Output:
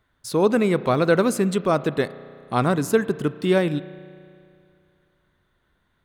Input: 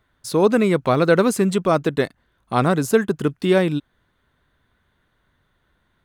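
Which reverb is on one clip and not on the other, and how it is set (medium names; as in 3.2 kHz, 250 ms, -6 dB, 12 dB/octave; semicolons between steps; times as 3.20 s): spring tank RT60 2.4 s, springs 33 ms, chirp 25 ms, DRR 15.5 dB; trim -2.5 dB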